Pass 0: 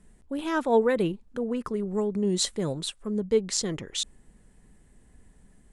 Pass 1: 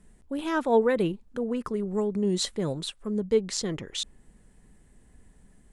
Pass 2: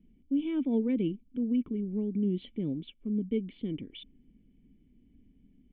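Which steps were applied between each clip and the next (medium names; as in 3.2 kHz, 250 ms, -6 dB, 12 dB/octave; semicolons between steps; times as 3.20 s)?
dynamic bell 8.3 kHz, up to -5 dB, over -44 dBFS, Q 0.83
cascade formant filter i; trim +5.5 dB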